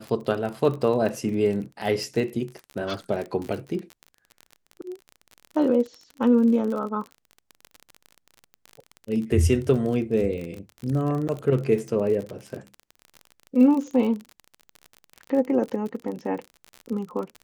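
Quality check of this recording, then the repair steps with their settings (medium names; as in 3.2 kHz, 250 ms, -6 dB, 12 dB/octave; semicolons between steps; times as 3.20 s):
crackle 35 per s -30 dBFS
11.28–11.29 s: dropout 8.2 ms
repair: de-click; interpolate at 11.28 s, 8.2 ms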